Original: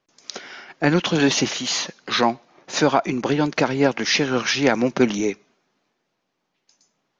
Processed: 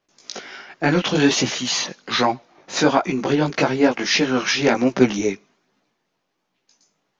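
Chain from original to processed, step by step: chorus voices 2, 1.3 Hz, delay 18 ms, depth 3 ms; trim +4 dB

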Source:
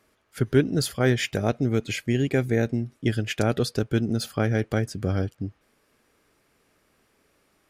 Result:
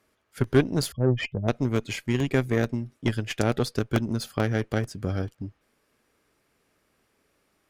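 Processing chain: 0.92–1.48 s: spectral contrast enhancement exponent 3.2; Chebyshev shaper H 4 -21 dB, 7 -26 dB, 8 -35 dB, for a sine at -7.5 dBFS; crackling interface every 0.44 s, samples 64, repeat, from 0.44 s

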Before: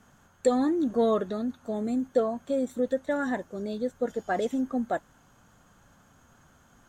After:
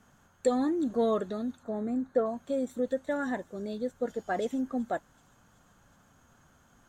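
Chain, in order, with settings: 1.63–2.26 s: resonant high shelf 2.4 kHz -10 dB, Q 1.5; feedback echo behind a high-pass 378 ms, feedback 62%, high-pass 5.2 kHz, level -15.5 dB; trim -3 dB

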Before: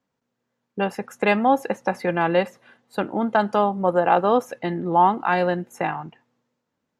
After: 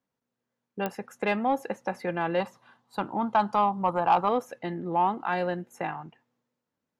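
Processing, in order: 2.40–4.29 s: graphic EQ 125/500/1000/2000/4000 Hz +5/-6/+12/-6/+4 dB; saturation -5.5 dBFS, distortion -19 dB; clicks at 0.86 s, -9 dBFS; trim -7 dB

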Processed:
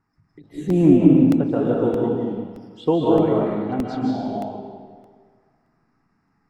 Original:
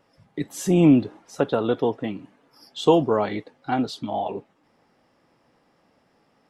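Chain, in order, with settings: block-companded coder 7-bit; low-pass 6.2 kHz 12 dB/octave; touch-sensitive phaser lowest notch 550 Hz, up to 4.8 kHz, full sweep at -19.5 dBFS; bass shelf 200 Hz +8.5 dB; reverberation RT60 1.7 s, pre-delay 115 ms, DRR -4 dB; dynamic bell 290 Hz, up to +5 dB, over -23 dBFS, Q 0.75; crackling interface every 0.62 s, samples 64, repeat, from 0.70 s; endings held to a fixed fall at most 150 dB/s; trim -7.5 dB

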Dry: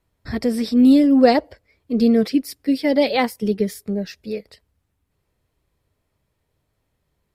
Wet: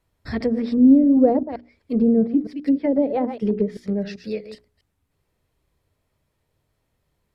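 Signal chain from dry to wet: chunks repeated in reverse 130 ms, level -12 dB; low-pass that closes with the level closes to 500 Hz, closed at -14 dBFS; hum notches 60/120/180/240/300/360/420 Hz

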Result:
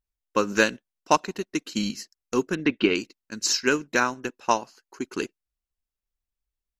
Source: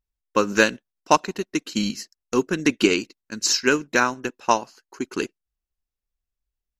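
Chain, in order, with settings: 2.55–2.95 s: low-pass 3.6 kHz 24 dB/octave; trim -3 dB

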